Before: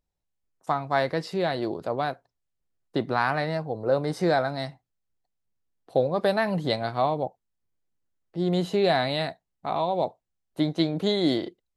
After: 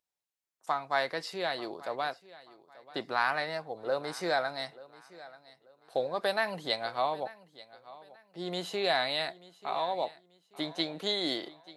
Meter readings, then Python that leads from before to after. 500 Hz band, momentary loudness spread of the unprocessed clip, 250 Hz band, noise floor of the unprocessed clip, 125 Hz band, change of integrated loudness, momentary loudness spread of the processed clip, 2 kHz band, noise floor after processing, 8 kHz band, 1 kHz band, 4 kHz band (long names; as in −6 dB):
−7.5 dB, 9 LU, −13.0 dB, −82 dBFS, −17.5 dB, −6.0 dB, 21 LU, −1.5 dB, −84 dBFS, can't be measured, −5.0 dB, −0.5 dB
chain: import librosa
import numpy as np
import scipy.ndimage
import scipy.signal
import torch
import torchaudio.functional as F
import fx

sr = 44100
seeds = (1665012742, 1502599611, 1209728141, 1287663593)

p1 = fx.highpass(x, sr, hz=1200.0, slope=6)
y = p1 + fx.echo_feedback(p1, sr, ms=886, feedback_pct=31, wet_db=-19.5, dry=0)